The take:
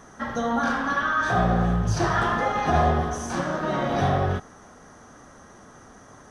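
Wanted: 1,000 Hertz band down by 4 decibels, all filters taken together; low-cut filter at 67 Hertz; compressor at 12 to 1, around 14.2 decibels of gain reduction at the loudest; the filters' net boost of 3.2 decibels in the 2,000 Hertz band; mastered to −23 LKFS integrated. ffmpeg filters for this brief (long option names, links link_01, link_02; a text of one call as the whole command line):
ffmpeg -i in.wav -af "highpass=67,equalizer=frequency=1000:width_type=o:gain=-8.5,equalizer=frequency=2000:width_type=o:gain=8,acompressor=threshold=-33dB:ratio=12,volume=13.5dB" out.wav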